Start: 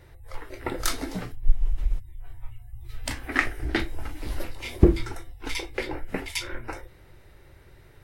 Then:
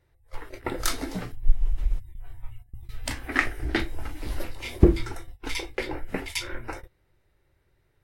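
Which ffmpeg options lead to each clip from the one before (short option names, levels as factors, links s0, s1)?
-af "agate=range=0.158:threshold=0.0126:ratio=16:detection=peak"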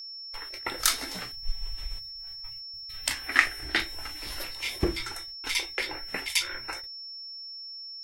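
-af "tiltshelf=f=760:g=-9.5,agate=range=0.0224:threshold=0.0112:ratio=3:detection=peak,aeval=exprs='val(0)+0.0178*sin(2*PI*5400*n/s)':c=same,volume=0.668"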